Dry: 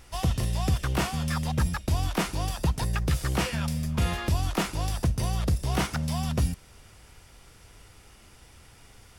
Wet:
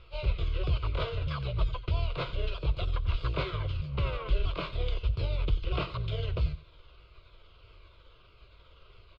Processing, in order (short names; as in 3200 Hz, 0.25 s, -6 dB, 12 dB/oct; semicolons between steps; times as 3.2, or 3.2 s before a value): repeated pitch sweeps -11.5 st, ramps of 0.636 s; Chebyshev low-pass 5500 Hz, order 5; fixed phaser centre 1200 Hz, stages 8; echo 91 ms -16.5 dB